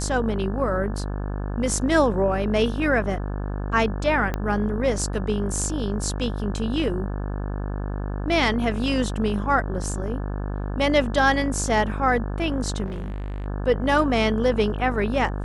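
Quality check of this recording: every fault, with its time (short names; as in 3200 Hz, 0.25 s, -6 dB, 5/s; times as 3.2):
buzz 50 Hz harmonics 35 -28 dBFS
4.34 pop -13 dBFS
12.85–13.46 clipped -27.5 dBFS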